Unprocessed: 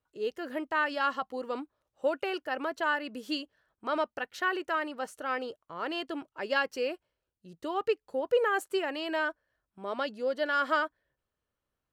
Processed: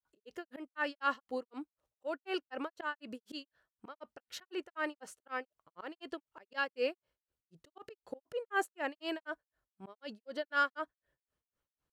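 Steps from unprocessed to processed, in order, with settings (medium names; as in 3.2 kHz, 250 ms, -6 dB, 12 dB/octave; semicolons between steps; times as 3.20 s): slow attack 138 ms; granulator 205 ms, grains 4 per s, spray 34 ms, pitch spread up and down by 0 st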